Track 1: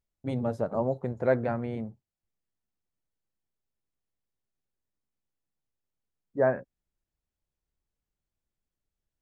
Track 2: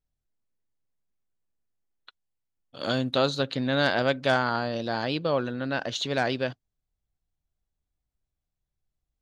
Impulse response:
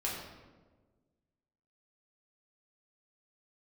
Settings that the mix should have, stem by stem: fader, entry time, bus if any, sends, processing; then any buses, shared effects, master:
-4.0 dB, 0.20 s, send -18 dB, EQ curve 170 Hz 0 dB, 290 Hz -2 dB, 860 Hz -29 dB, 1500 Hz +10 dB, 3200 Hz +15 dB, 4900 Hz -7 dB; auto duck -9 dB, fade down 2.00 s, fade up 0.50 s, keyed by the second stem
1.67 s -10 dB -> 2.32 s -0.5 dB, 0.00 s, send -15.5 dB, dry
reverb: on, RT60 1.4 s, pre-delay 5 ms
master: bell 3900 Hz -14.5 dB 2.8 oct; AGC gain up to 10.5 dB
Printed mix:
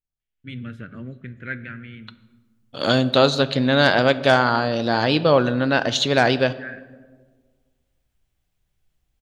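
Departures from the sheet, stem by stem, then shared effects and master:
stem 1 -4.0 dB -> -11.5 dB; master: missing bell 3900 Hz -14.5 dB 2.8 oct

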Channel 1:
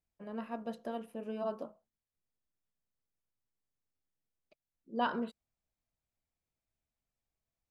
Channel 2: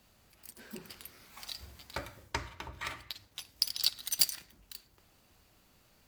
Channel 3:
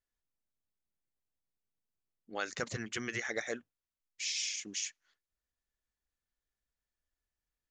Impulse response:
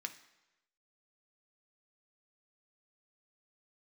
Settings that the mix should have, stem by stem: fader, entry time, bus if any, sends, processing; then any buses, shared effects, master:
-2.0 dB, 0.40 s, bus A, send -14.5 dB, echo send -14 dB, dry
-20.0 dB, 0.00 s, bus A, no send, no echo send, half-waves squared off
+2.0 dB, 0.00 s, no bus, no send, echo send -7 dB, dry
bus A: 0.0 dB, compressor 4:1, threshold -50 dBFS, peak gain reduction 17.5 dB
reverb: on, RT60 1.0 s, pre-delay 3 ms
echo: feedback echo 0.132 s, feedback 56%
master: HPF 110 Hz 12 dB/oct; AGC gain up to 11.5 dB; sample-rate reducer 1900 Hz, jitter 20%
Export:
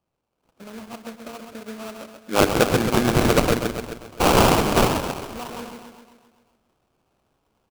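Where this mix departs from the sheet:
stem 2 -20.0 dB -> -26.0 dB; stem 3 +2.0 dB -> +11.0 dB

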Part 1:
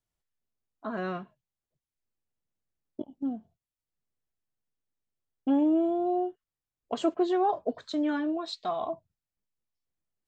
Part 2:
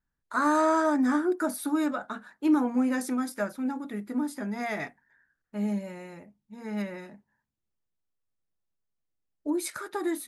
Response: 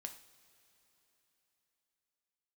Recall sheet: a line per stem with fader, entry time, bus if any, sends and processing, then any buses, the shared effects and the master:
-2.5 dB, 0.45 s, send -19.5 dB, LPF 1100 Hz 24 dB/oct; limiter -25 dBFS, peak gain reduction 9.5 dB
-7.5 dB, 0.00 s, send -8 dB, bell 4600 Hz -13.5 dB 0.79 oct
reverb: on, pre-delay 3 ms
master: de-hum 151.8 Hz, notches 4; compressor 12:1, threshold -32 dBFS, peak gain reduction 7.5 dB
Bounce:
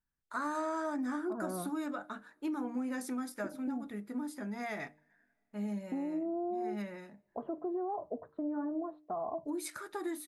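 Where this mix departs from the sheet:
stem 2: missing bell 4600 Hz -13.5 dB 0.79 oct; reverb return -7.0 dB

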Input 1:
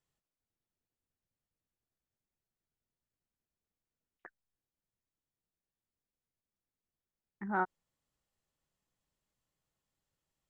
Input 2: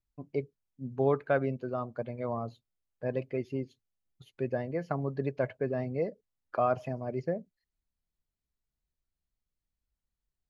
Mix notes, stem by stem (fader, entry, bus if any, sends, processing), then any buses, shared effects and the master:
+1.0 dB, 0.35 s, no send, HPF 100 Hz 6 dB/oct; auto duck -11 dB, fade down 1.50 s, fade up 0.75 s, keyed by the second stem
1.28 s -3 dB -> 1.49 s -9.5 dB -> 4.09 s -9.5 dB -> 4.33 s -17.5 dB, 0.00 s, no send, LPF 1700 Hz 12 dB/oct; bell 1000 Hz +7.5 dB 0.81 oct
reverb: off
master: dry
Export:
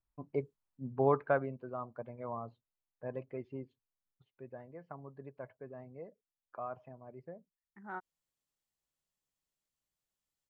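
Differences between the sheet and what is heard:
stem 1 +1.0 dB -> -8.5 dB; master: extra high shelf 2600 Hz +7.5 dB

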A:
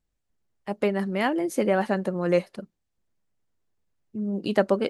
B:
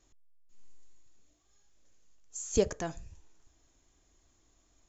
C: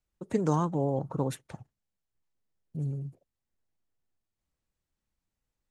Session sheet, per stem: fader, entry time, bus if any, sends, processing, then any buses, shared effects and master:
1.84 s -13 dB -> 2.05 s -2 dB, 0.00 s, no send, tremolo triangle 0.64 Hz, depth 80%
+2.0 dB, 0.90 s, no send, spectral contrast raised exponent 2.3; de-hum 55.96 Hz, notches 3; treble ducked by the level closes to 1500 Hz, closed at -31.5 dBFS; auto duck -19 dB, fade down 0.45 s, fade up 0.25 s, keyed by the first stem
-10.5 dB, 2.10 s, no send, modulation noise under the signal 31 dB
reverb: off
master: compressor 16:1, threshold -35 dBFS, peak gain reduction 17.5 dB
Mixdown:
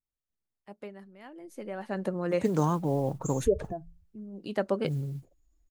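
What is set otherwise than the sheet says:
stem C -10.5 dB -> +0.5 dB; master: missing compressor 16:1, threshold -35 dBFS, peak gain reduction 17.5 dB

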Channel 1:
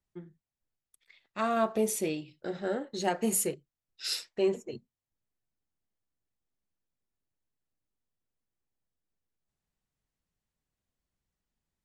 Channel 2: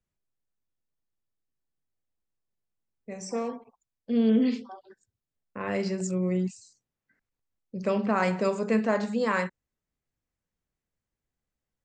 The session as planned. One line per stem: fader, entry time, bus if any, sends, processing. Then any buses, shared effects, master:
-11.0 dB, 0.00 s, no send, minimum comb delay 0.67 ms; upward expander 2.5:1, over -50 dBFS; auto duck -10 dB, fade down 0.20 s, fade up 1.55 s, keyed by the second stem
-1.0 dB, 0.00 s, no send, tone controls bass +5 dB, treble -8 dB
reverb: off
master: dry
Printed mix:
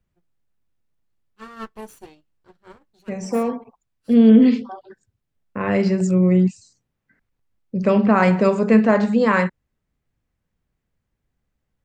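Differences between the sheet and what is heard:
stem 1 -11.0 dB -> 0.0 dB; stem 2 -1.0 dB -> +8.5 dB

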